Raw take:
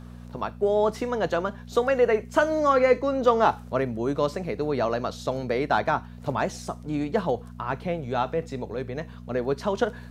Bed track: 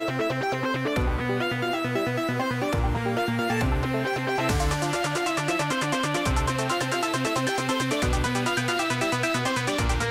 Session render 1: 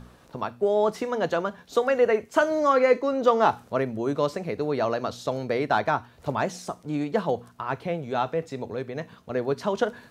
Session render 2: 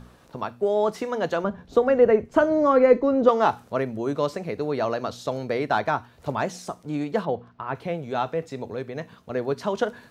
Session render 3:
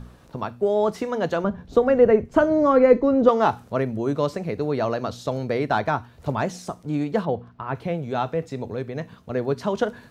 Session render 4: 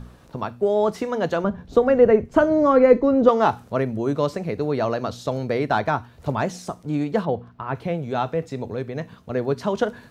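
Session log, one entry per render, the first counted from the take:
hum removal 60 Hz, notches 4
0:01.44–0:03.29: spectral tilt −3.5 dB per octave; 0:07.25–0:07.75: high-frequency loss of the air 240 metres
low-shelf EQ 210 Hz +8 dB
level +1 dB

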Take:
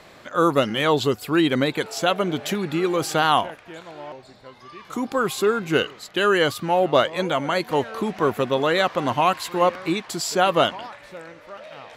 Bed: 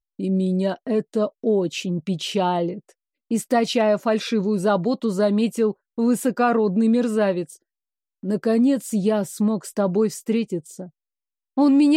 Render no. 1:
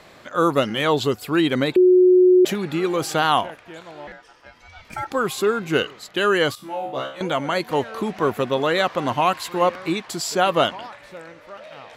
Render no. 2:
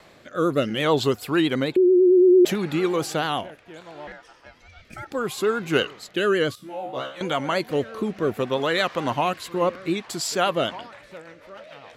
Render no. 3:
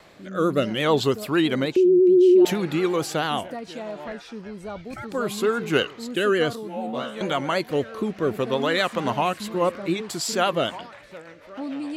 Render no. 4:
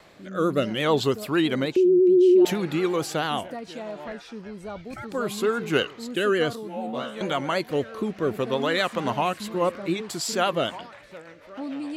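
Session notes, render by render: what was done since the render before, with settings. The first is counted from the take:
0:01.76–0:02.45: beep over 365 Hz −9.5 dBFS; 0:04.07–0:05.11: ring modulation 1,100 Hz; 0:06.55–0:07.21: tuned comb filter 67 Hz, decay 0.43 s, mix 100%
rotating-speaker cabinet horn 0.65 Hz, later 7 Hz, at 0:10.27; pitch vibrato 9 Hz 53 cents
mix in bed −15.5 dB
level −1.5 dB

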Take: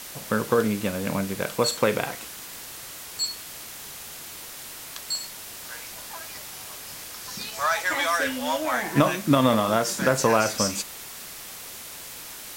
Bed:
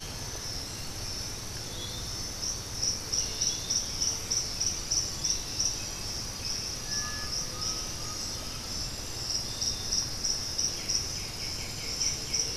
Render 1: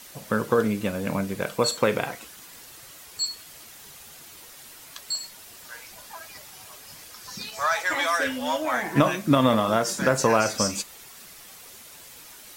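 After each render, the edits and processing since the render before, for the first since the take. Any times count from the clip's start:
broadband denoise 8 dB, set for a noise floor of −40 dBFS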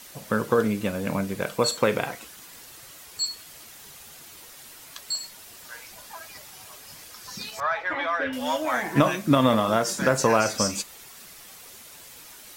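0:07.60–0:08.33: high-frequency loss of the air 360 metres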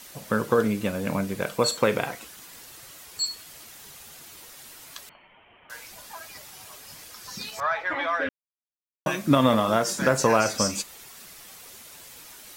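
0:05.09–0:05.70: Chebyshev low-pass with heavy ripple 3,200 Hz, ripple 6 dB
0:08.29–0:09.06: silence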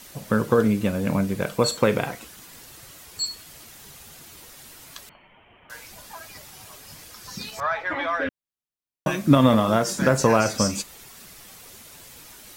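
low-shelf EQ 290 Hz +7.5 dB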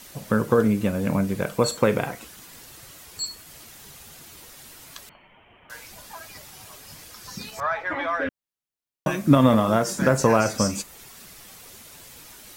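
dynamic equaliser 3,800 Hz, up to −4 dB, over −42 dBFS, Q 1.1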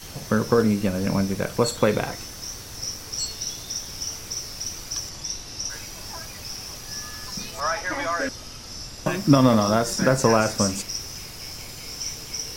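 mix in bed −2 dB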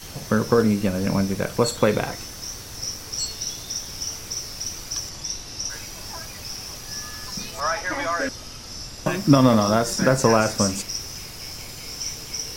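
level +1 dB

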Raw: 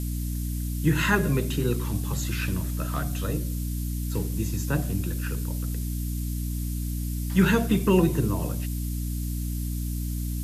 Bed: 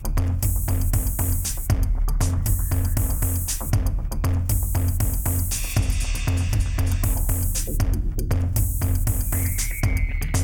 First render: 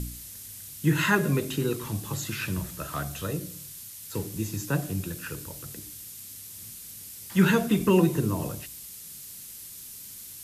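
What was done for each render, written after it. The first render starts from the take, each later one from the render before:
hum removal 60 Hz, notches 5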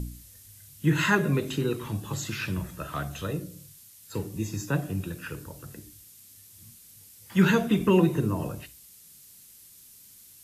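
noise reduction from a noise print 9 dB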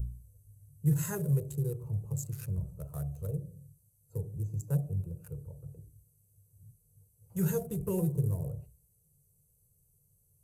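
adaptive Wiener filter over 25 samples
drawn EQ curve 150 Hz 0 dB, 260 Hz −27 dB, 460 Hz −5 dB, 1,100 Hz −20 dB, 3,400 Hz −25 dB, 9,000 Hz +8 dB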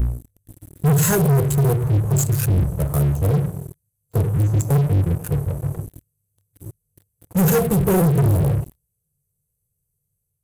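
automatic gain control gain up to 4 dB
leveller curve on the samples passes 5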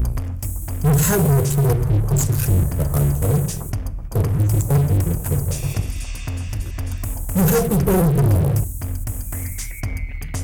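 mix in bed −4 dB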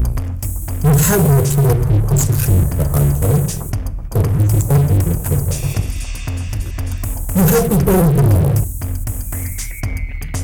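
level +4 dB

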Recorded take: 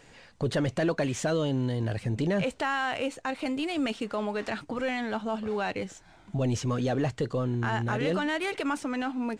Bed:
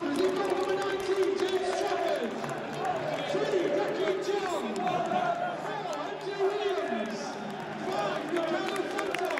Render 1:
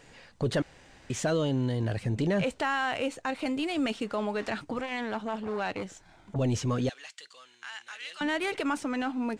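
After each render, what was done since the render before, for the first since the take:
0:00.62–0:01.10: fill with room tone
0:04.79–0:06.36: saturating transformer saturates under 680 Hz
0:06.89–0:08.21: flat-topped band-pass 5,800 Hz, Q 0.59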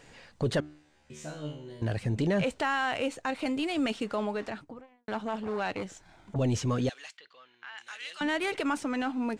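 0:00.60–0:01.82: tuned comb filter 75 Hz, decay 0.54 s, mix 100%
0:04.13–0:05.08: fade out and dull
0:07.17–0:07.78: high-frequency loss of the air 300 metres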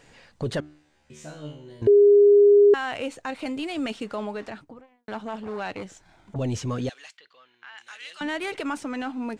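0:01.87–0:02.74: beep over 408 Hz −11 dBFS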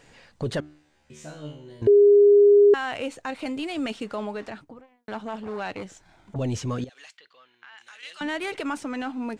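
0:06.84–0:08.03: downward compressor 5 to 1, threshold −42 dBFS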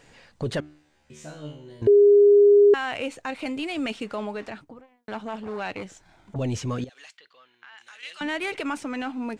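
dynamic equaliser 2,400 Hz, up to +4 dB, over −48 dBFS, Q 2.8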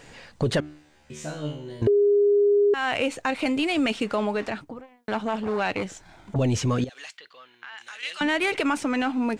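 in parallel at +1 dB: brickwall limiter −19 dBFS, peak gain reduction 8 dB
on the sum: downward compressor 4 to 1, threshold −19 dBFS, peak gain reduction 8 dB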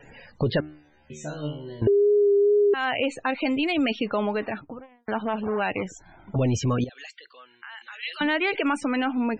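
spectral peaks only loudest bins 64
tape wow and flutter 26 cents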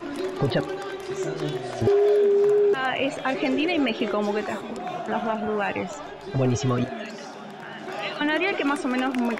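mix in bed −2.5 dB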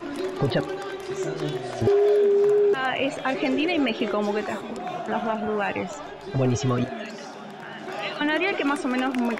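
no processing that can be heard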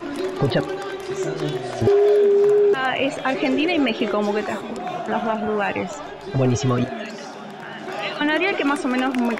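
level +3.5 dB

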